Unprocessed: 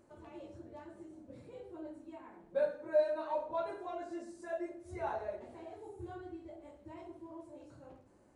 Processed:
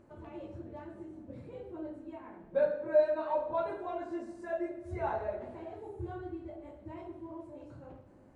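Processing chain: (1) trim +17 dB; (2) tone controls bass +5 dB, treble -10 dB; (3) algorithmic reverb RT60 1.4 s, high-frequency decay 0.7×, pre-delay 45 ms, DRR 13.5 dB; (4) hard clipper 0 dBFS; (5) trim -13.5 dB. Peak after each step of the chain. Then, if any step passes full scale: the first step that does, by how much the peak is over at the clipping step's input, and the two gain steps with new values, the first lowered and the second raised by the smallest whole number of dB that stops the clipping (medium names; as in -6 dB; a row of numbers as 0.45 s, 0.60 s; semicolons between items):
-2.5 dBFS, -2.5 dBFS, -2.5 dBFS, -2.5 dBFS, -16.0 dBFS; nothing clips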